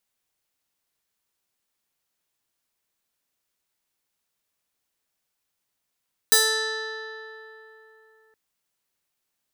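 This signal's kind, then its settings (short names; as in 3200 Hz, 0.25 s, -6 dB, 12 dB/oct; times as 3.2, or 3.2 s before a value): plucked string A4, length 2.02 s, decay 3.46 s, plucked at 0.4, bright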